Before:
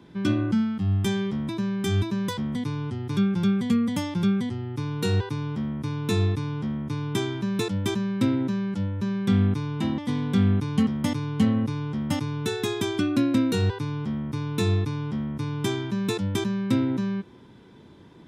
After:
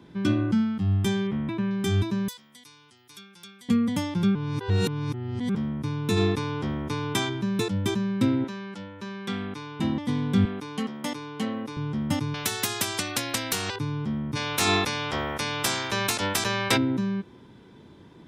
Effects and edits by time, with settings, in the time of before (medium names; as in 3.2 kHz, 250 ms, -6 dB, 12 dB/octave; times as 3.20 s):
1.27–1.71 s: resonant high shelf 3.8 kHz -13 dB, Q 1.5
2.28–3.69 s: differentiator
4.35–5.55 s: reverse
6.16–7.28 s: spectral peaks clipped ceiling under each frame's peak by 13 dB
8.44–9.80 s: frequency weighting A
10.45–11.77 s: high-pass 360 Hz
12.34–13.76 s: spectrum-flattening compressor 4:1
14.35–16.76 s: spectral peaks clipped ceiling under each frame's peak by 30 dB